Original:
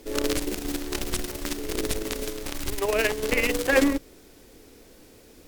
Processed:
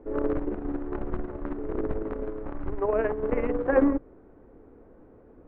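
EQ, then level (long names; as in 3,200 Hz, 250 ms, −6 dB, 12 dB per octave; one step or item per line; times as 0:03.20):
low-pass filter 1,300 Hz 24 dB per octave
0.0 dB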